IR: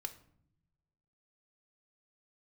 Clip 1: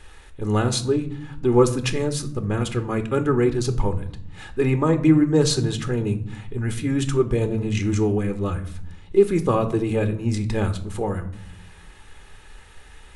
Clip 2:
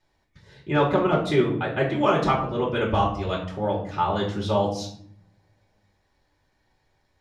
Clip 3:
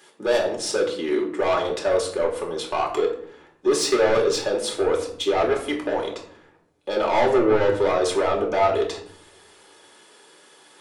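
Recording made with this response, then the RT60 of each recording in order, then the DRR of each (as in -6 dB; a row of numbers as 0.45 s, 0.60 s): 1; no single decay rate, 0.65 s, 0.65 s; 7.5 dB, -5.0 dB, -1.0 dB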